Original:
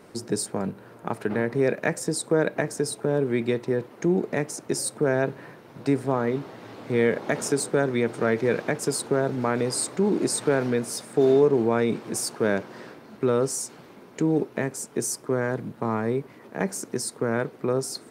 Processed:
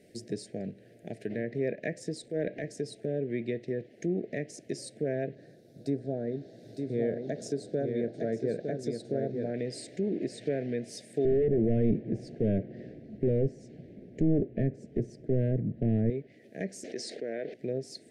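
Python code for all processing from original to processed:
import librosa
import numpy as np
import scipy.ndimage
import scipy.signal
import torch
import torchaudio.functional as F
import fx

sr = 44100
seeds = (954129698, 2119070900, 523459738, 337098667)

y = fx.chain(x, sr, fx.highpass(hz=51.0, slope=12),
    fx.transient(attack_db=-7, sustain_db=5), at=(2.23, 2.64))
y = fx.chain(y, sr, fx.band_shelf(hz=2400.0, db=-11.5, octaves=1.0),
    fx.echo_single(ms=908, db=-5.0), at=(5.35, 9.54))
y = fx.chain(y, sr, fx.clip_hard(threshold_db=-20.5),
    fx.tilt_eq(slope=-4.5), at=(11.25, 16.1))
y = fx.chain(y, sr, fx.bandpass_edges(low_hz=370.0, high_hz=4800.0),
    fx.env_flatten(amount_pct=70), at=(16.84, 17.54))
y = fx.env_lowpass_down(y, sr, base_hz=2600.0, full_db=-19.5)
y = scipy.signal.sosfilt(scipy.signal.ellip(3, 1.0, 80, [660.0, 1800.0], 'bandstop', fs=sr, output='sos'), y)
y = y * librosa.db_to_amplitude(-7.5)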